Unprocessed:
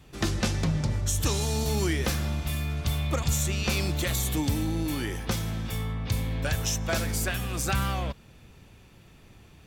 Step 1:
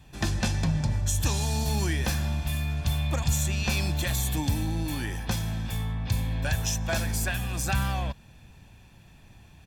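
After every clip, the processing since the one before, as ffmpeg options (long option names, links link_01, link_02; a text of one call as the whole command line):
ffmpeg -i in.wav -af "aecho=1:1:1.2:0.46,volume=-1.5dB" out.wav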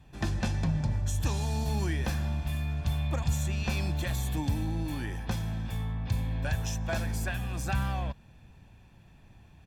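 ffmpeg -i in.wav -af "highshelf=frequency=2900:gain=-8.5,volume=-2.5dB" out.wav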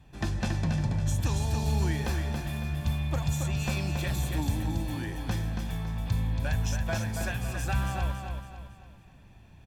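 ffmpeg -i in.wav -af "aecho=1:1:278|556|834|1112|1390:0.531|0.218|0.0892|0.0366|0.015" out.wav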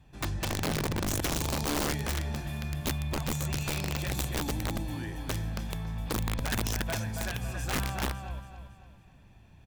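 ffmpeg -i in.wav -af "aeval=exprs='(mod(12.6*val(0)+1,2)-1)/12.6':channel_layout=same,volume=-2.5dB" out.wav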